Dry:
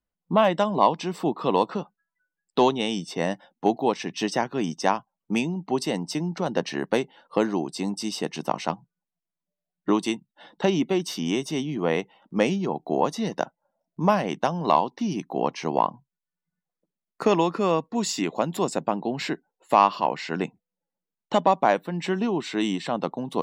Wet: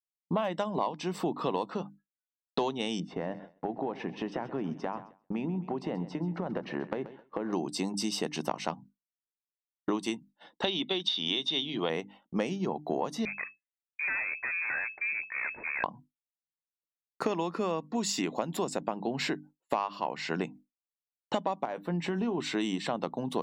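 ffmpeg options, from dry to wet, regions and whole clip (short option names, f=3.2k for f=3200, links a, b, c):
-filter_complex "[0:a]asettb=1/sr,asplit=3[a][b][c];[a]atrim=end=3.004[d];[b]atrim=start=3:end=7.53,asetpts=PTS-STARTPTS,afade=t=in:d=0.004:c=qsin,afade=t=out:st=4.526:d=0.004:c=qsin,lowpass=1.6k,acompressor=threshold=-27dB:ratio=10:attack=3.2:release=140:knee=1:detection=peak,aecho=1:1:132|264|396|528|660:0.168|0.0856|0.0437|0.0223|0.0114,atrim=end_sample=199773[e];[c]atrim=start=7.526[f];[d][e]acrossfade=d=0.004:c1=hsin:c2=qsin[g];[g][f]acrossfade=d=0.004:c1=qsin:c2=hsin,asettb=1/sr,asplit=3[h][i][j];[h]atrim=end=10.644[k];[i]atrim=start=10.64:end=11.9,asetpts=PTS-STARTPTS,afade=t=in:d=0.004:c=qsin,afade=t=out:st=1.256:d=0.004:c=qsin,lowpass=f=3.6k:t=q:w=12,lowshelf=f=160:g=-12[l];[j]atrim=start=11.896[m];[k][l]acrossfade=d=0.004:c1=hsin:c2=qsin[n];[n][m]acrossfade=d=0.004:c1=qsin:c2=hsin,asettb=1/sr,asplit=3[o][p][q];[o]atrim=end=13.254[r];[p]atrim=start=13.25:end=15.84,asetpts=PTS-STARTPTS,afade=t=in:d=0.004:c=qsin,afade=t=out:st=2.586:d=0.004:c=qsin,aeval=exprs='(tanh(28.2*val(0)+0.7)-tanh(0.7))/28.2':c=same,lowpass=f=2.2k:t=q:w=0.5098,lowpass=f=2.2k:t=q:w=0.6013,lowpass=f=2.2k:t=q:w=0.9,lowpass=f=2.2k:t=q:w=2.563,afreqshift=-2600[s];[q]atrim=start=15.836[t];[r][s]acrossfade=d=0.004:c1=hsin:c2=qsin[u];[u][t]acrossfade=d=0.004:c1=qsin:c2=hsin,asettb=1/sr,asplit=3[v][w][x];[v]atrim=end=21.654[y];[w]atrim=start=21.65:end=22.38,asetpts=PTS-STARTPTS,afade=t=in:d=0.004:c=qsin,afade=t=out:st=0.726:d=0.004:c=qsin,highshelf=f=2.7k:g=-8,acompressor=threshold=-25dB:ratio=3:attack=3.2:release=140:knee=1:detection=peak,asplit=2[z][aa];[aa]adelay=17,volume=-13dB[ab];[z][ab]amix=inputs=2:normalize=0,atrim=end_sample=32193[ac];[x]atrim=start=22.376[ad];[y][ac]acrossfade=d=0.004:c1=hsin:c2=qsin[ae];[ae][ad]acrossfade=d=0.004:c1=qsin:c2=hsin,bandreject=f=50:t=h:w=6,bandreject=f=100:t=h:w=6,bandreject=f=150:t=h:w=6,bandreject=f=200:t=h:w=6,bandreject=f=250:t=h:w=6,bandreject=f=300:t=h:w=6,agate=range=-33dB:threshold=-42dB:ratio=3:detection=peak,acompressor=threshold=-27dB:ratio=6"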